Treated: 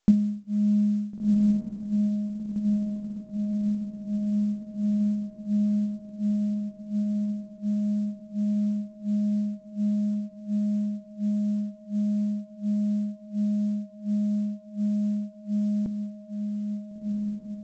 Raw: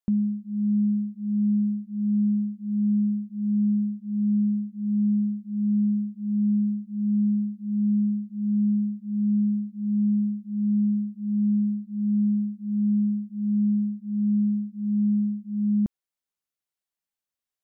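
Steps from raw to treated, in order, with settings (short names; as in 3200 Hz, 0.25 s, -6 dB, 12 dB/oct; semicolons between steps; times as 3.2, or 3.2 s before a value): bell 76 Hz -6.5 dB 0.87 oct; notches 60/120/180/240/300/360/420 Hz; transient shaper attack +9 dB, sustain -6 dB; diffused feedback echo 1.427 s, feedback 69%, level -4 dB; on a send at -23.5 dB: reverb, pre-delay 3 ms; on the sum: µ-law 128 kbps 16000 Hz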